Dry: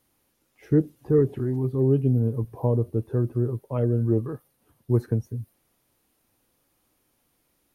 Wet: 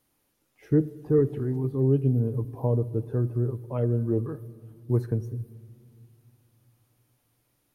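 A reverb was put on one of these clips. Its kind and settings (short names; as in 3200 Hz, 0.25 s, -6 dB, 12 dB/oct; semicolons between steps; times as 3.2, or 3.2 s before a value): shoebox room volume 4000 m³, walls mixed, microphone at 0.39 m; gain -2.5 dB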